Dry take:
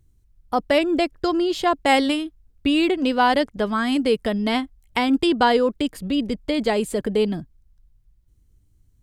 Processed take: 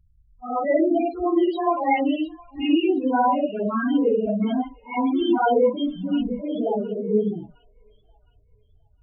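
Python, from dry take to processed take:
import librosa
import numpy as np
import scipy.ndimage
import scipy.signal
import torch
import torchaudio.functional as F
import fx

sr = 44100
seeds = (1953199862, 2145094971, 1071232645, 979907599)

y = fx.phase_scramble(x, sr, seeds[0], window_ms=200)
y = fx.spec_topn(y, sr, count=8)
y = fx.echo_wet_highpass(y, sr, ms=711, feedback_pct=32, hz=1500.0, wet_db=-15.5)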